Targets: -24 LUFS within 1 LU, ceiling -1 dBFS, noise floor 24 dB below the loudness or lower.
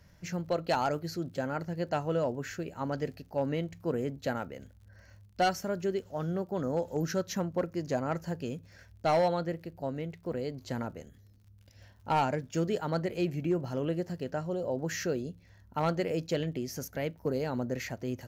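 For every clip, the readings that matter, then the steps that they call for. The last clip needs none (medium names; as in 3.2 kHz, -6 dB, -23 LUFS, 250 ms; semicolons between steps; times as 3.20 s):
tick rate 45 per s; loudness -33.0 LUFS; peak level -20.0 dBFS; loudness target -24.0 LUFS
-> de-click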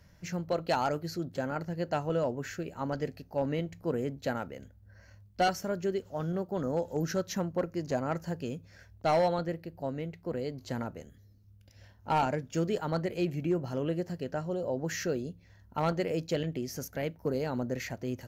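tick rate 0.11 per s; loudness -33.0 LUFS; peak level -18.5 dBFS; loudness target -24.0 LUFS
-> trim +9 dB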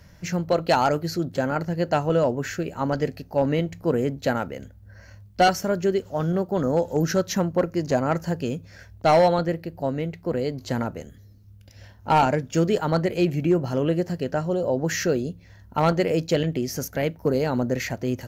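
loudness -24.0 LUFS; peak level -9.5 dBFS; noise floor -49 dBFS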